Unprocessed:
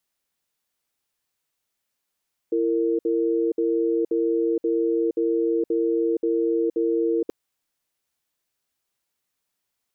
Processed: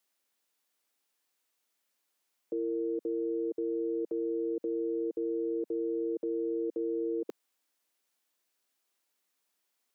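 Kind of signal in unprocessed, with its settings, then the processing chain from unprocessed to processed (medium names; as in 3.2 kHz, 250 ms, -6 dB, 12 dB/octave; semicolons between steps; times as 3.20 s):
cadence 335 Hz, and 459 Hz, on 0.47 s, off 0.06 s, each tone -22 dBFS 4.78 s
high-pass 220 Hz 24 dB/octave; peak limiter -26.5 dBFS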